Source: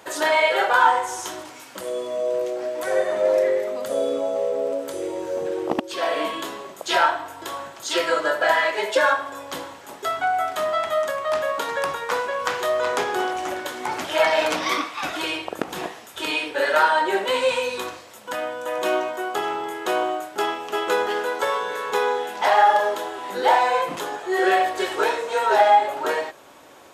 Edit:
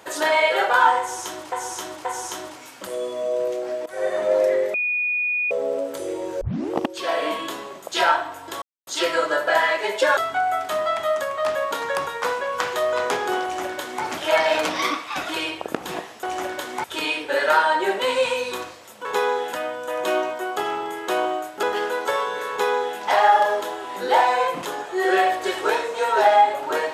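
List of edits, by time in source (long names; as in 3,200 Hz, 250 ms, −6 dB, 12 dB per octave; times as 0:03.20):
0:00.99–0:01.52: repeat, 3 plays
0:02.80–0:03.08: fade in, from −19.5 dB
0:03.68–0:04.45: beep over 2,460 Hz −20 dBFS
0:05.35: tape start 0.30 s
0:07.56–0:07.81: silence
0:09.11–0:10.04: remove
0:13.30–0:13.91: duplicate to 0:16.10
0:20.41–0:20.97: remove
0:21.84–0:22.32: duplicate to 0:18.31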